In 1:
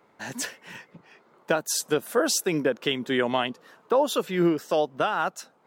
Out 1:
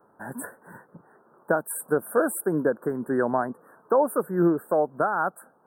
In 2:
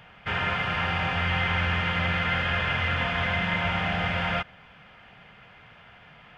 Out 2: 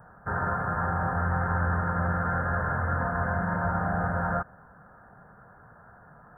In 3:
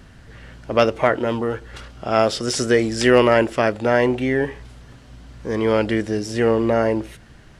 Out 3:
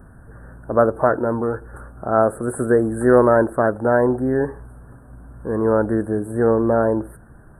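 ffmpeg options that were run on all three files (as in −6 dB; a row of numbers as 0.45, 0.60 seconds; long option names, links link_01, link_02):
-af "asuperstop=centerf=3900:order=20:qfactor=0.57,volume=1dB"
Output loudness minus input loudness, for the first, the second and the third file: +0.5, −2.5, +0.5 LU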